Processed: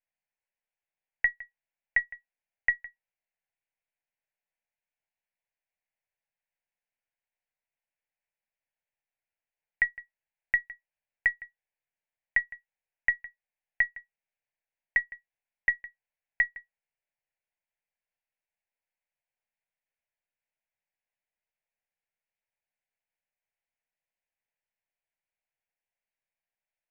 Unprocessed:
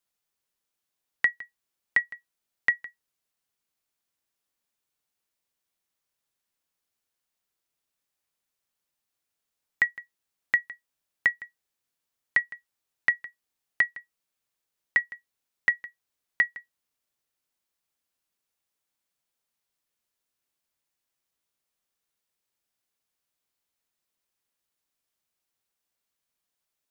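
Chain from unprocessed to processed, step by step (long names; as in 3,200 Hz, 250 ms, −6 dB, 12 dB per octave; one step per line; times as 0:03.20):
gain on one half-wave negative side −3 dB
Chebyshev low-pass filter 2,500 Hz, order 3
low-shelf EQ 420 Hz −6 dB
phaser with its sweep stopped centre 1,200 Hz, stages 6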